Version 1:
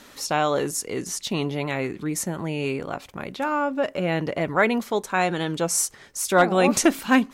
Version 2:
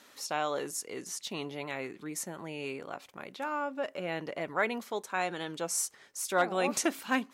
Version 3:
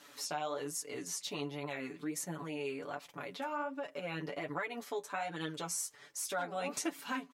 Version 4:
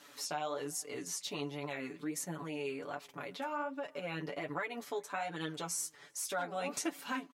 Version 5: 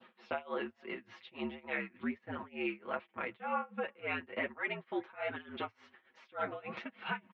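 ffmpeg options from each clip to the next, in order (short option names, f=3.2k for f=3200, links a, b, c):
-af "highpass=f=380:p=1,volume=-8.5dB"
-af "aecho=1:1:6.9:0.95,acompressor=threshold=-35dB:ratio=3,flanger=delay=5.8:depth=6.4:regen=35:speed=1.3:shape=sinusoidal,volume=2dB"
-filter_complex "[0:a]asplit=2[a][b];[b]adelay=379,volume=-29dB,highshelf=f=4k:g=-8.53[c];[a][c]amix=inputs=2:normalize=0"
-af "tremolo=f=3.4:d=0.95,highpass=f=210:t=q:w=0.5412,highpass=f=210:t=q:w=1.307,lowpass=f=3.2k:t=q:w=0.5176,lowpass=f=3.2k:t=q:w=0.7071,lowpass=f=3.2k:t=q:w=1.932,afreqshift=-65,adynamicequalizer=threshold=0.00158:dfrequency=1900:dqfactor=0.81:tfrequency=1900:tqfactor=0.81:attack=5:release=100:ratio=0.375:range=3:mode=boostabove:tftype=bell,volume=3dB"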